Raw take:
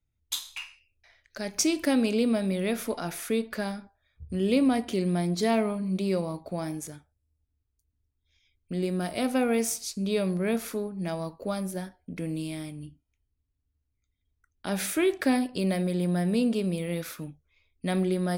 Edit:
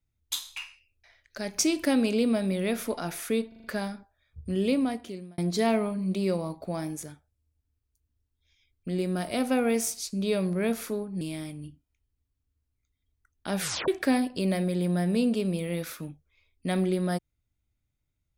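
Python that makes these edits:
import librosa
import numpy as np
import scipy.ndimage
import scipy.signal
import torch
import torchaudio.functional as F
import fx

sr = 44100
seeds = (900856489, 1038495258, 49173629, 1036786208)

y = fx.edit(x, sr, fx.stutter(start_s=3.48, slice_s=0.04, count=5),
    fx.fade_out_span(start_s=4.38, length_s=0.84),
    fx.cut(start_s=11.05, length_s=1.35),
    fx.tape_stop(start_s=14.8, length_s=0.27), tone=tone)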